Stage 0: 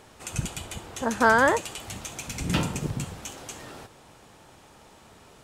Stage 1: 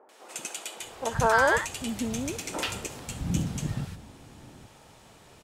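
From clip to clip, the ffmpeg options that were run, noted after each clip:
-filter_complex "[0:a]acrossover=split=330|1200[a][b][c];[c]adelay=90[d];[a]adelay=800[e];[e][b][d]amix=inputs=3:normalize=0"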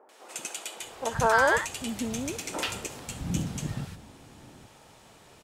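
-af "lowshelf=f=160:g=-4"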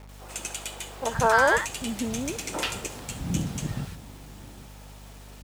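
-af "acrusher=bits=8:mix=0:aa=0.000001,aeval=exprs='val(0)+0.00447*(sin(2*PI*50*n/s)+sin(2*PI*2*50*n/s)/2+sin(2*PI*3*50*n/s)/3+sin(2*PI*4*50*n/s)/4+sin(2*PI*5*50*n/s)/5)':c=same,volume=2dB"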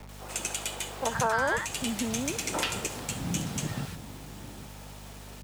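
-filter_complex "[0:a]acrossover=split=89|240|610[a][b][c][d];[a]acompressor=threshold=-52dB:ratio=4[e];[b]acompressor=threshold=-36dB:ratio=4[f];[c]acompressor=threshold=-41dB:ratio=4[g];[d]acompressor=threshold=-29dB:ratio=4[h];[e][f][g][h]amix=inputs=4:normalize=0,volume=2.5dB"

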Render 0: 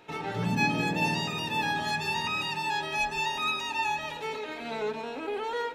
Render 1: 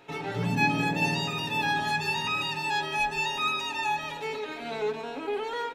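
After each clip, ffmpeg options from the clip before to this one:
-af "aecho=1:1:7.2:0.41"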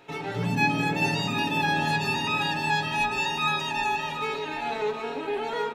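-filter_complex "[0:a]asplit=2[a][b];[b]adelay=768,lowpass=f=1.8k:p=1,volume=-3.5dB,asplit=2[c][d];[d]adelay=768,lowpass=f=1.8k:p=1,volume=0.49,asplit=2[e][f];[f]adelay=768,lowpass=f=1.8k:p=1,volume=0.49,asplit=2[g][h];[h]adelay=768,lowpass=f=1.8k:p=1,volume=0.49,asplit=2[i][j];[j]adelay=768,lowpass=f=1.8k:p=1,volume=0.49,asplit=2[k][l];[l]adelay=768,lowpass=f=1.8k:p=1,volume=0.49[m];[a][c][e][g][i][k][m]amix=inputs=7:normalize=0,volume=1dB"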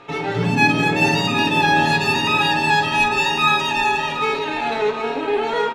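-filter_complex "[0:a]asplit=2[a][b];[b]adelay=48,volume=-9.5dB[c];[a][c]amix=inputs=2:normalize=0,adynamicsmooth=sensitivity=6.5:basefreq=7.3k,aeval=exprs='val(0)+0.00158*sin(2*PI*1200*n/s)':c=same,volume=8.5dB"

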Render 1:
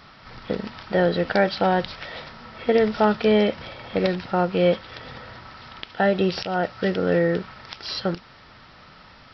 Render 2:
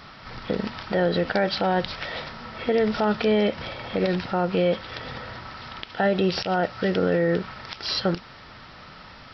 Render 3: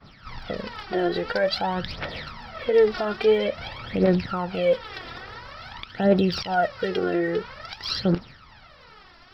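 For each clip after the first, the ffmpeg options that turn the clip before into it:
-af "alimiter=limit=-16.5dB:level=0:latency=1:release=96,volume=3.5dB"
-af "agate=range=-33dB:threshold=-40dB:ratio=3:detection=peak,aphaser=in_gain=1:out_gain=1:delay=3:decay=0.7:speed=0.49:type=triangular,volume=-4dB"

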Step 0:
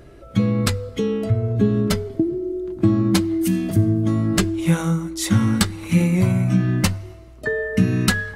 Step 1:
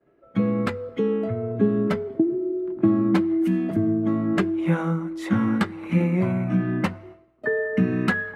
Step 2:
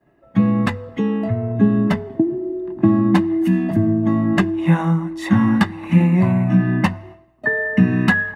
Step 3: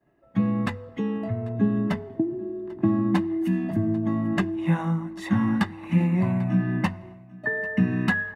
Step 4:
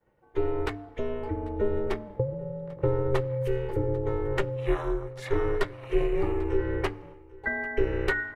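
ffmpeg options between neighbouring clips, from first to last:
-filter_complex "[0:a]agate=range=-33dB:threshold=-34dB:ratio=3:detection=peak,acrossover=split=160 2400:gain=0.0891 1 0.0708[a][b][c];[a][b][c]amix=inputs=3:normalize=0"
-af "aecho=1:1:1.1:0.62,volume=5dB"
-af "aecho=1:1:793:0.075,volume=-7.5dB"
-af "aeval=exprs='val(0)*sin(2*PI*200*n/s)':c=same"

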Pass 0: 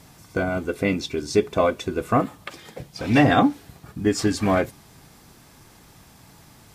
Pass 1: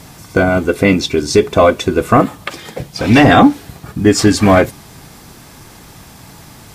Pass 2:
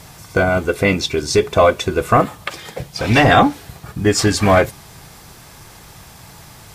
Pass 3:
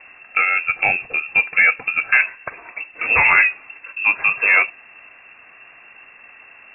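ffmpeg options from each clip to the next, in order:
-af "apsyclip=13.5dB,volume=-1.5dB"
-af "equalizer=f=260:t=o:w=0.89:g=-8,volume=-1.5dB"
-af "lowpass=f=2.4k:t=q:w=0.5098,lowpass=f=2.4k:t=q:w=0.6013,lowpass=f=2.4k:t=q:w=0.9,lowpass=f=2.4k:t=q:w=2.563,afreqshift=-2800,volume=-2.5dB"

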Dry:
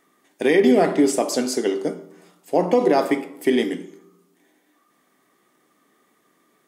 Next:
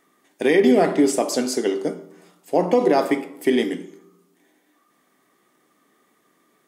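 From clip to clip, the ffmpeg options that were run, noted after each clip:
-af anull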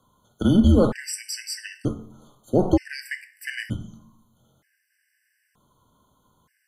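-af "afreqshift=-170,afftfilt=real='re*gt(sin(2*PI*0.54*pts/sr)*(1-2*mod(floor(b*sr/1024/1500),2)),0)':imag='im*gt(sin(2*PI*0.54*pts/sr)*(1-2*mod(floor(b*sr/1024/1500),2)),0)':win_size=1024:overlap=0.75"

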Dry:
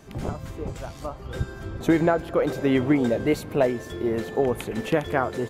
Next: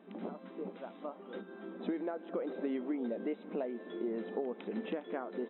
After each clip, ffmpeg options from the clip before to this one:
-af "acompressor=threshold=-27dB:ratio=6,afftfilt=real='re*between(b*sr/4096,180,4000)':imag='im*between(b*sr/4096,180,4000)':win_size=4096:overlap=0.75,tiltshelf=f=920:g=4.5,volume=-9dB"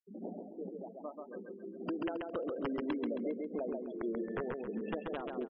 -af "aeval=exprs='(mod(22.4*val(0)+1,2)-1)/22.4':c=same,afftfilt=real='re*gte(hypot(re,im),0.0158)':imag='im*gte(hypot(re,im),0.0158)':win_size=1024:overlap=0.75,aecho=1:1:135|270|405|540|675:0.668|0.247|0.0915|0.0339|0.0125,volume=-1.5dB"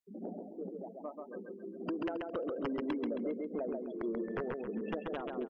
-af "asoftclip=type=tanh:threshold=-25.5dB,volume=1dB"

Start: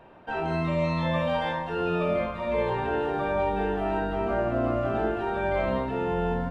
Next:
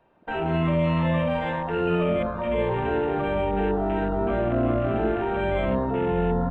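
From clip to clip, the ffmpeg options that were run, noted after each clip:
-filter_complex "[0:a]afwtdn=0.0158,acrossover=split=480|2200[a][b][c];[b]alimiter=level_in=5.5dB:limit=-24dB:level=0:latency=1,volume=-5.5dB[d];[a][d][c]amix=inputs=3:normalize=0,volume=5dB"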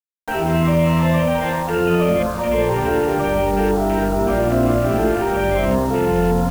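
-af "acrusher=bits=6:mix=0:aa=0.000001,volume=6.5dB"

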